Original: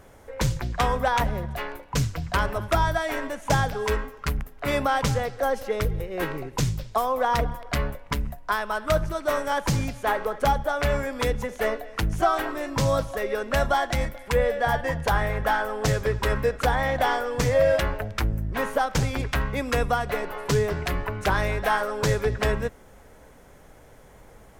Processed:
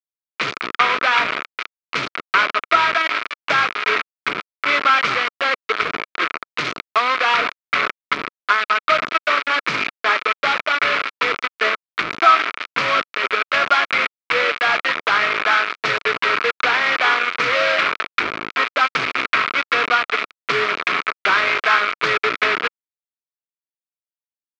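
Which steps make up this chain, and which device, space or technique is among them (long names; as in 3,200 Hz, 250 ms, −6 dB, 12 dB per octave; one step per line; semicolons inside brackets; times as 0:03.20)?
hand-held game console (bit reduction 4 bits; loudspeaker in its box 450–4,200 Hz, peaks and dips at 540 Hz −7 dB, 820 Hz −10 dB, 1,300 Hz +10 dB, 2,300 Hz +9 dB)
level +5.5 dB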